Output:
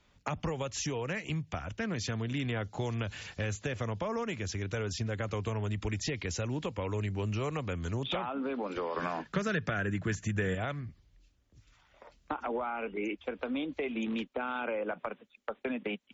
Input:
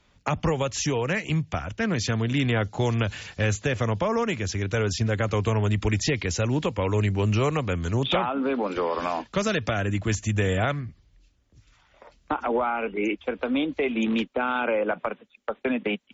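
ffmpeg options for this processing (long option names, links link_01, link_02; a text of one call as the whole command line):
ffmpeg -i in.wav -filter_complex "[0:a]asettb=1/sr,asplit=3[link_01][link_02][link_03];[link_01]atrim=end=8.964[link_04];[link_02]atrim=start=8.96:end=10.55,asetpts=PTS-STARTPTS,afade=type=in:duration=0.004:curve=qsin,afade=type=out:start_time=1.586:duration=0.004:curve=qsin,equalizer=frequency=160:width_type=o:width=0.67:gain=12,equalizer=frequency=400:width_type=o:width=0.67:gain=6,equalizer=frequency=1600:width_type=o:width=0.67:gain=11[link_05];[link_03]atrim=start=10.546[link_06];[link_04][link_05]acrossfade=duration=0.004:curve1=hsin:curve2=qsin[link_07];[link_07][link_06]acrossfade=duration=0.004:curve1=qsin:curve2=hsin,acompressor=threshold=-30dB:ratio=2,volume=-4.5dB" out.wav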